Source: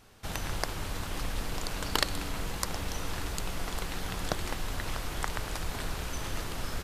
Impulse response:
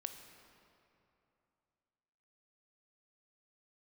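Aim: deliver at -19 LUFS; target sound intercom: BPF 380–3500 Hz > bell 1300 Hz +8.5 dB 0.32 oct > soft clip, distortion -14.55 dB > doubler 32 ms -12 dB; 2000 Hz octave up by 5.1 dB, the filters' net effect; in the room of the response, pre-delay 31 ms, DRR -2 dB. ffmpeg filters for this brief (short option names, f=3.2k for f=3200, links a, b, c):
-filter_complex "[0:a]equalizer=f=2k:t=o:g=5,asplit=2[a][b];[1:a]atrim=start_sample=2205,adelay=31[c];[b][c]afir=irnorm=-1:irlink=0,volume=4.5dB[d];[a][d]amix=inputs=2:normalize=0,highpass=380,lowpass=3.5k,equalizer=f=1.3k:t=o:w=0.32:g=8.5,asoftclip=threshold=-14.5dB,asplit=2[e][f];[f]adelay=32,volume=-12dB[g];[e][g]amix=inputs=2:normalize=0,volume=12dB"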